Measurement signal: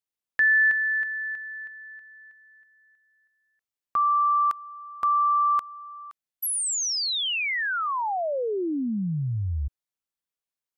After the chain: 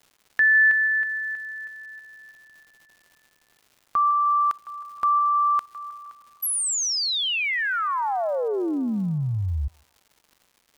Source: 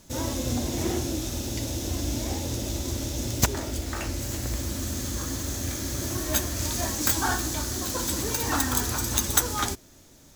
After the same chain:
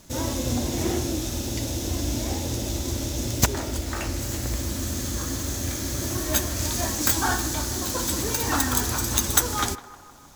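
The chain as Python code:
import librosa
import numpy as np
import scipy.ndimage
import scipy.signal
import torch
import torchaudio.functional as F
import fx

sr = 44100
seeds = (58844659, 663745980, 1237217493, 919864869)

p1 = fx.dmg_crackle(x, sr, seeds[0], per_s=280.0, level_db=-47.0)
p2 = p1 + fx.echo_banded(p1, sr, ms=156, feedback_pct=67, hz=970.0, wet_db=-14.5, dry=0)
y = p2 * 10.0 ** (2.0 / 20.0)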